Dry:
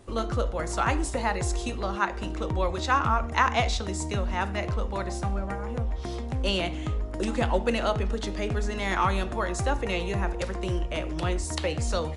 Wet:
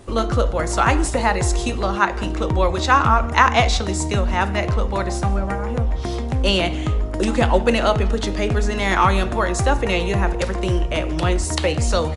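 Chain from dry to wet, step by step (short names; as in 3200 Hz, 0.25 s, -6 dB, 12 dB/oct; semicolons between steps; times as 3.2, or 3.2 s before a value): frequency-shifting echo 0.167 s, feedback 32%, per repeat +41 Hz, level -23 dB; gain +8.5 dB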